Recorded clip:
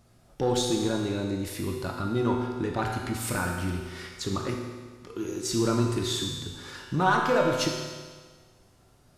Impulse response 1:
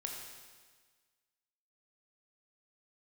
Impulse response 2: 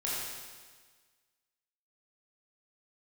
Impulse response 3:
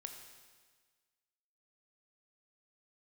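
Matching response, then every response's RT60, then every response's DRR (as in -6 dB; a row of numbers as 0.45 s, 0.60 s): 1; 1.5 s, 1.5 s, 1.5 s; 0.0 dB, -7.5 dB, 4.0 dB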